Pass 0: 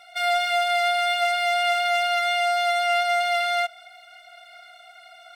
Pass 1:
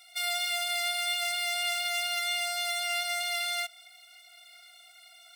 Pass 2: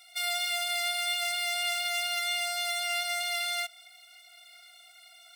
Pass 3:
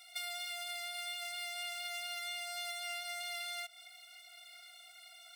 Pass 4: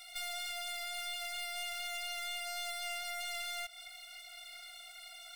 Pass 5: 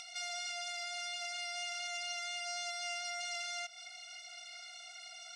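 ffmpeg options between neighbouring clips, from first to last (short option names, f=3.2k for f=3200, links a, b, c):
-af "aderivative,bandreject=f=1.5k:w=9.9,volume=4dB"
-af anull
-af "acompressor=threshold=-37dB:ratio=12,volume=-1.5dB"
-af "aeval=exprs='(tanh(141*val(0)+0.35)-tanh(0.35))/141':c=same,volume=6dB"
-af "highpass=360,equalizer=f=500:t=q:w=4:g=-6,equalizer=f=1.1k:t=q:w=4:g=-7,equalizer=f=1.8k:t=q:w=4:g=-6,equalizer=f=3.6k:t=q:w=4:g=-6,equalizer=f=5.8k:t=q:w=4:g=8,lowpass=f=7.1k:w=0.5412,lowpass=f=7.1k:w=1.3066,acompressor=mode=upward:threshold=-48dB:ratio=2.5,volume=2dB"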